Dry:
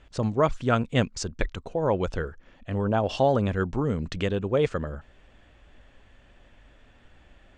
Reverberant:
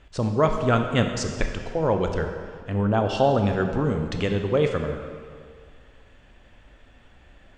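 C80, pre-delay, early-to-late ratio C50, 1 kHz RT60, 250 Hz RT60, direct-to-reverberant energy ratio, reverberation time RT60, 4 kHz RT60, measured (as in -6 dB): 7.5 dB, 17 ms, 6.0 dB, 2.1 s, 1.9 s, 4.5 dB, 2.0 s, 1.6 s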